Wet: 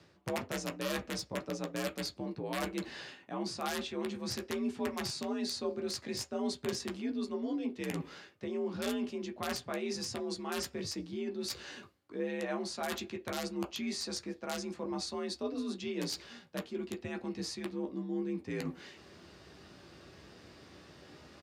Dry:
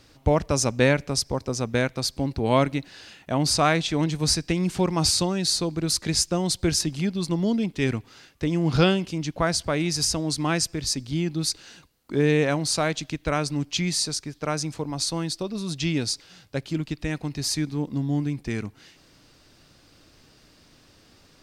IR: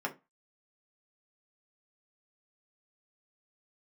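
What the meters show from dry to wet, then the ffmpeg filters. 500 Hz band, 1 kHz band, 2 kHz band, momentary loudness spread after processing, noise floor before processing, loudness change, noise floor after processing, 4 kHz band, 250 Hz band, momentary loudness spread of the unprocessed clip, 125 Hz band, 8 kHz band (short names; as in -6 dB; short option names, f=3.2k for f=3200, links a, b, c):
-10.5 dB, -12.5 dB, -12.0 dB, 18 LU, -57 dBFS, -13.0 dB, -60 dBFS, -13.5 dB, -11.5 dB, 9 LU, -20.0 dB, -16.5 dB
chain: -filter_complex "[0:a]acrossover=split=9100[a][b];[b]acompressor=threshold=-42dB:ratio=4:attack=1:release=60[c];[a][c]amix=inputs=2:normalize=0,aemphasis=mode=reproduction:type=cd,areverse,acompressor=threshold=-37dB:ratio=5,areverse,aeval=exprs='(mod(26.6*val(0)+1,2)-1)/26.6':c=same,aresample=32000,aresample=44100,asplit=2[d][e];[1:a]atrim=start_sample=2205,asetrate=57330,aresample=44100,adelay=12[f];[e][f]afir=irnorm=-1:irlink=0,volume=-4.5dB[g];[d][g]amix=inputs=2:normalize=0,afreqshift=55"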